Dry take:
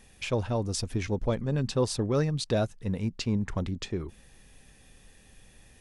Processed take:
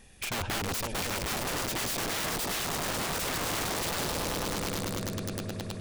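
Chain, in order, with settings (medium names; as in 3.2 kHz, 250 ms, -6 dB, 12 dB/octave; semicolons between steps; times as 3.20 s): echo with a slow build-up 104 ms, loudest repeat 8, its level -14 dB; integer overflow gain 28 dB; trim +1 dB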